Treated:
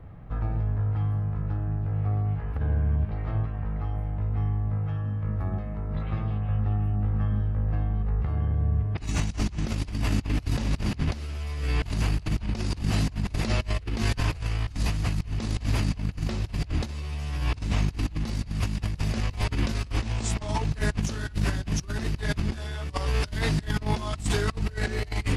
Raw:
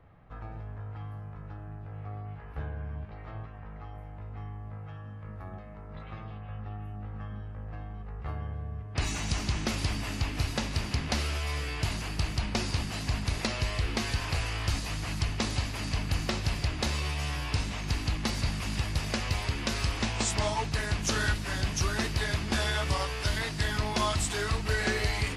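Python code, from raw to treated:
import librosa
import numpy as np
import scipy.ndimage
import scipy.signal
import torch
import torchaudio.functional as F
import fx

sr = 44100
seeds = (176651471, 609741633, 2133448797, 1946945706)

y = fx.low_shelf(x, sr, hz=380.0, db=11.0)
y = fx.over_compress(y, sr, threshold_db=-26.0, ratio=-0.5)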